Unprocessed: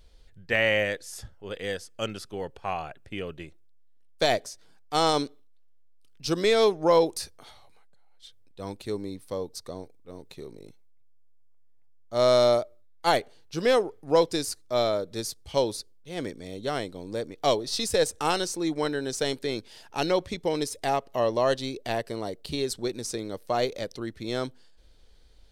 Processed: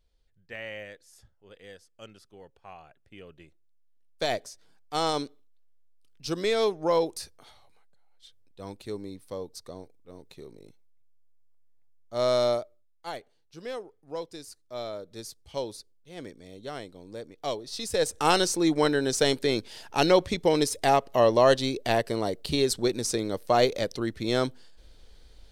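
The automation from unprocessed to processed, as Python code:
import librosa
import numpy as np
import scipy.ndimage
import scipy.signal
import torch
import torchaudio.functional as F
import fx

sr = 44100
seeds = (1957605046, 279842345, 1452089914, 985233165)

y = fx.gain(x, sr, db=fx.line((2.83, -15.5), (4.39, -4.0), (12.51, -4.0), (13.08, -14.5), (14.36, -14.5), (15.24, -8.0), (17.7, -8.0), (18.35, 4.5)))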